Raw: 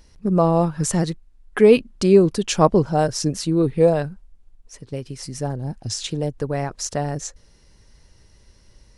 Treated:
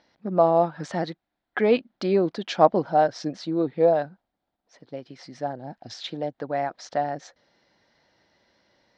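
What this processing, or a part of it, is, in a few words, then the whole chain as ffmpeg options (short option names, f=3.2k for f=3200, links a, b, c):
phone earpiece: -filter_complex "[0:a]asettb=1/sr,asplit=3[a][b][c];[a]atrim=end=3.374[d];[b]atrim=start=3.37:end=5.09,asetpts=PTS-STARTPTS,afade=t=in:d=0.004:c=qsin,afade=t=out:st=1.716:d=0.004:c=qsin,equalizer=f=2.2k:t=o:w=1.4:g=-3.5[e];[c]atrim=start=5.086[f];[d][e]acrossfade=d=0.004:c1=hsin:c2=qsin[g];[g][f]acrossfade=d=0.004:c1=qsin:c2=hsin,highpass=330,equalizer=f=420:t=q:w=4:g=-9,equalizer=f=710:t=q:w=4:g=5,equalizer=f=1.1k:t=q:w=4:g=-5,equalizer=f=2.7k:t=q:w=4:g=-8,lowpass=f=3.9k:w=0.5412,lowpass=f=3.9k:w=1.3066"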